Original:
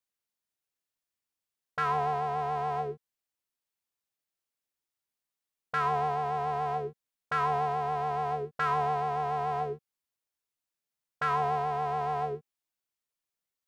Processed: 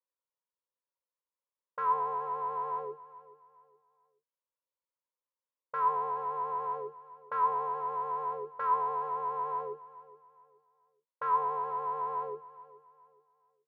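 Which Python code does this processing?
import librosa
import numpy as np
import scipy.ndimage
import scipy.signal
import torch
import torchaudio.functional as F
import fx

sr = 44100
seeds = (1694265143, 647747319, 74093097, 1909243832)

y = fx.double_bandpass(x, sr, hz=720.0, octaves=0.86)
y = fx.echo_feedback(y, sr, ms=423, feedback_pct=33, wet_db=-18.0)
y = y * 10.0 ** (5.0 / 20.0)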